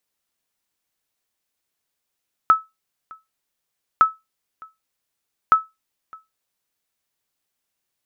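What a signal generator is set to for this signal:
ping with an echo 1,300 Hz, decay 0.20 s, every 1.51 s, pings 3, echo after 0.61 s, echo −26.5 dB −5 dBFS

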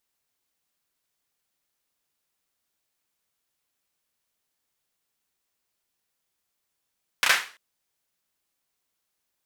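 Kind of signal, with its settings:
synth clap length 0.34 s, bursts 3, apart 32 ms, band 1,800 Hz, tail 0.37 s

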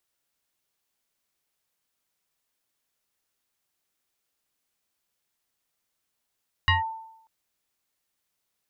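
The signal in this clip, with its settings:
two-operator FM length 0.59 s, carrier 893 Hz, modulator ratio 1.1, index 2.3, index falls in 0.15 s linear, decay 0.79 s, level −15 dB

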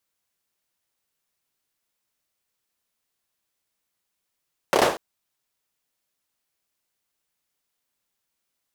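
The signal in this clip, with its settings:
synth clap length 0.24 s, apart 29 ms, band 540 Hz, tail 0.41 s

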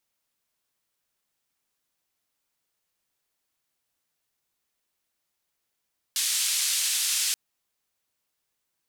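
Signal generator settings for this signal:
band-limited noise 3,000–9,700 Hz, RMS −26 dBFS 1.18 s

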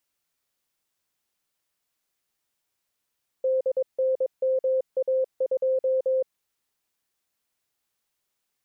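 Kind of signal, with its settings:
Morse code "DNMA2" 22 words per minute 522 Hz −20 dBFS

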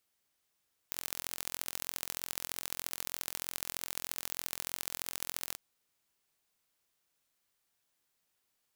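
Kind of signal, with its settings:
impulse train 43.2 per second, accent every 3, −7.5 dBFS 4.64 s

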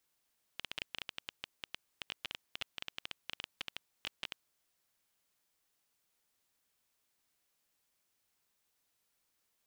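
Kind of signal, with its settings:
Geiger counter clicks 12 per second −21.5 dBFS 3.97 s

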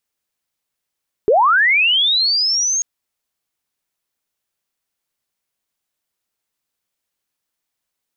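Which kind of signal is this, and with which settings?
glide linear 380 Hz → 6,600 Hz −9 dBFS → −15.5 dBFS 1.54 s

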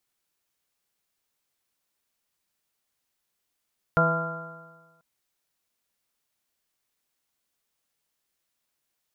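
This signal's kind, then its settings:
stiff-string partials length 1.04 s, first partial 163 Hz, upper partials −12/−4/−1.5/−12.5/−7/−14/3 dB, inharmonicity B 0.002, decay 1.35 s, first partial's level −22 dB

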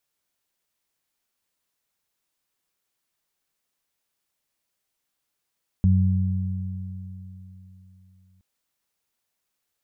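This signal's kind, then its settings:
harmonic partials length 2.57 s, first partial 93.4 Hz, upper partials −4 dB, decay 3.62 s, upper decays 3.39 s, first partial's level −15 dB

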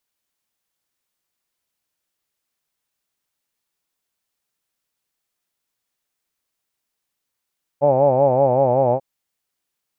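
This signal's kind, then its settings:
vowel by formant synthesis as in hawed, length 1.19 s, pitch 138 Hz, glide −1.5 semitones, vibrato depth 1.1 semitones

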